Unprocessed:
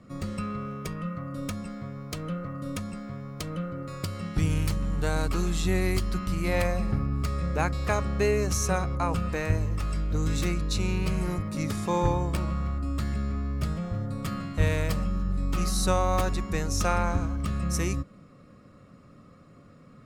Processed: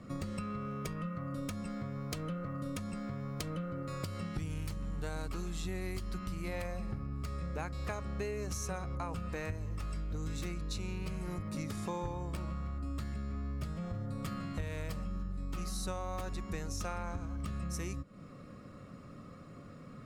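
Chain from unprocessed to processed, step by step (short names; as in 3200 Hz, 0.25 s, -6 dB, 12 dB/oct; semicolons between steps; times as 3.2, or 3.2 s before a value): compressor, threshold -38 dBFS, peak gain reduction 19 dB; gain +2 dB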